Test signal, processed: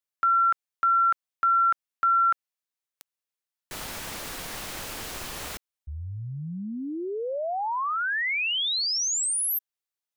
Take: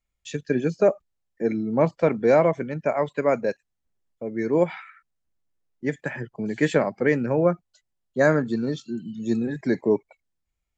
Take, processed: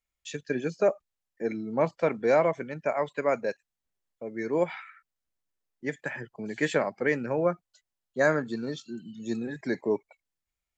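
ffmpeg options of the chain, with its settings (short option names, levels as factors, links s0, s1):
-af "lowshelf=f=430:g=-8.5,volume=0.841"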